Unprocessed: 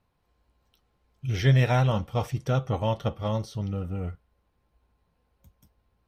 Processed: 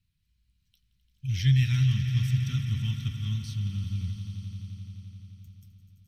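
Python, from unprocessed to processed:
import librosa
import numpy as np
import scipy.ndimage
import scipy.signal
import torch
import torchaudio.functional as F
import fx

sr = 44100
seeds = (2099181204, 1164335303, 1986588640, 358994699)

y = scipy.signal.sosfilt(scipy.signal.cheby1(2, 1.0, [140.0, 2900.0], 'bandstop', fs=sr, output='sos'), x)
y = fx.peak_eq(y, sr, hz=620.0, db=-2.5, octaves=2.4)
y = fx.echo_swell(y, sr, ms=86, loudest=5, wet_db=-14.0)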